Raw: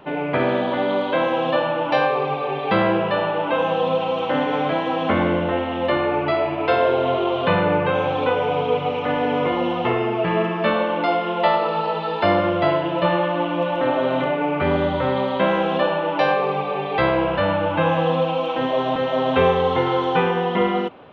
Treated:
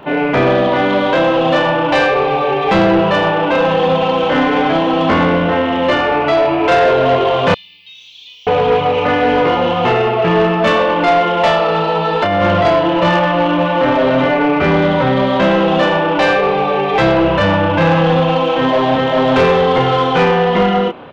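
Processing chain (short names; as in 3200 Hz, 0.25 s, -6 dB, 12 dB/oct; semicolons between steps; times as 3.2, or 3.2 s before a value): doubler 30 ms -2.5 dB; 7.54–8.47 inverse Chebyshev high-pass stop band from 1600 Hz, stop band 50 dB; 12.22–12.65 negative-ratio compressor -19 dBFS, ratio -1; soft clip -15 dBFS, distortion -14 dB; gain +8.5 dB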